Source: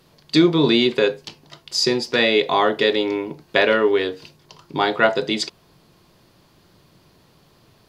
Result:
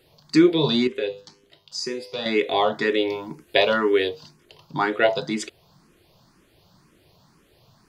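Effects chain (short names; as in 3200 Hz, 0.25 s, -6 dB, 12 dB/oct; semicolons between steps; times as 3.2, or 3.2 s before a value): 0.87–2.26 resonator 100 Hz, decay 0.61 s, harmonics all, mix 70%; 3.09–4.09 high shelf 5800 Hz +7.5 dB; endless phaser +2 Hz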